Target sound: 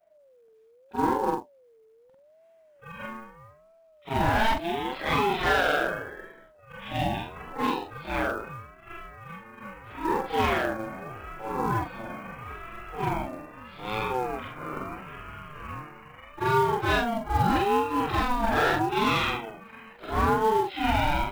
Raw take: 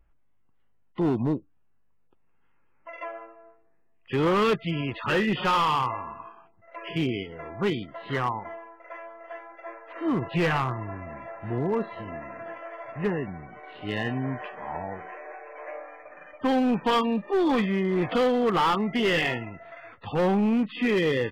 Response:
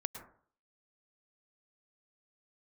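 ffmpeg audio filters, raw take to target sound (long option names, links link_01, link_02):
-af "afftfilt=real='re':imag='-im':win_size=4096:overlap=0.75,acrusher=bits=6:mode=log:mix=0:aa=0.000001,aeval=exprs='val(0)*sin(2*PI*550*n/s+550*0.2/0.78*sin(2*PI*0.78*n/s))':channel_layout=same,volume=6.5dB"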